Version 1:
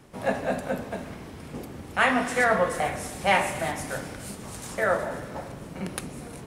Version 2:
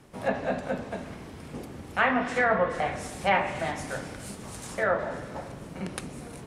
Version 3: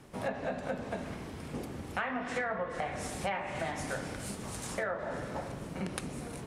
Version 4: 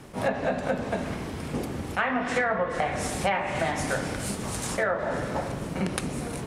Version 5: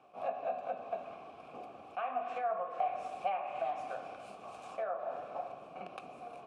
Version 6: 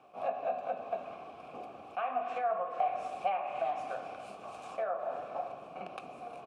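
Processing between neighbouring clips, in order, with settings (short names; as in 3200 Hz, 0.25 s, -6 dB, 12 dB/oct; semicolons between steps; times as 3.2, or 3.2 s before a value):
treble ducked by the level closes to 2500 Hz, closed at -18.5 dBFS; gain -1.5 dB
compressor 8:1, threshold -31 dBFS, peak gain reduction 13 dB
attack slew limiter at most 300 dB/s; gain +8.5 dB
vowel filter a; gain -2 dB
echo 0.51 s -21 dB; gain +2.5 dB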